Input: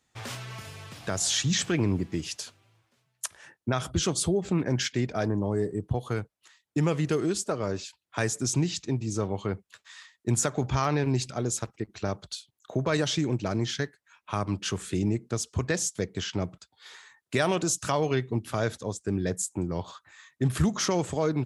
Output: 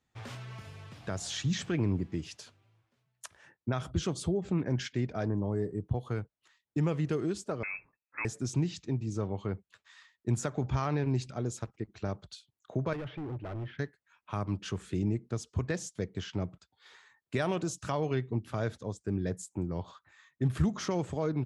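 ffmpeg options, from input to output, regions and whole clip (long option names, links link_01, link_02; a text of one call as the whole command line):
ffmpeg -i in.wav -filter_complex "[0:a]asettb=1/sr,asplit=3[link_01][link_02][link_03];[link_01]atrim=end=7.634[link_04];[link_02]atrim=start=7.63:end=8.25,asetpts=PTS-STARTPTS,afade=type=in:duration=0.004:curve=qsin,afade=type=out:start_time=0.616:duration=0.004:curve=qsin,highshelf=frequency=2100:gain=-9,acrusher=bits=3:mode=log:mix=0:aa=0.000001,lowpass=frequency=2300:width_type=q:width=0.5098,lowpass=frequency=2300:width_type=q:width=0.6013,lowpass=frequency=2300:width_type=q:width=0.9,lowpass=frequency=2300:width_type=q:width=2.563,afreqshift=-2700[link_05];[link_03]atrim=start=8.246[link_06];[link_04][link_05]acrossfade=duration=0.004:curve1=hsin:curve2=qsin[link_07];[link_07][link_06]acrossfade=duration=0.004:curve1=qsin:curve2=hsin,asettb=1/sr,asplit=3[link_08][link_09][link_10];[link_08]atrim=end=12.934[link_11];[link_09]atrim=start=12.93:end=13.79,asetpts=PTS-STARTPTS,afade=type=in:duration=0.004:curve=qsin,afade=type=out:start_time=0.856:duration=0.004:curve=qsin,lowpass=frequency=2300:width=0.5412,lowpass=frequency=2300:width=1.3066,equalizer=frequency=200:width=3:gain=-11.5,volume=31dB,asoftclip=hard,volume=-31dB[link_12];[link_10]atrim=start=13.786[link_13];[link_11][link_12]acrossfade=duration=0.004:curve1=hsin:curve2=qsin[link_14];[link_14][link_13]acrossfade=duration=0.004:curve1=qsin:curve2=hsin,lowpass=frequency=3400:poles=1,lowshelf=frequency=230:gain=5,volume=-6.5dB" out.wav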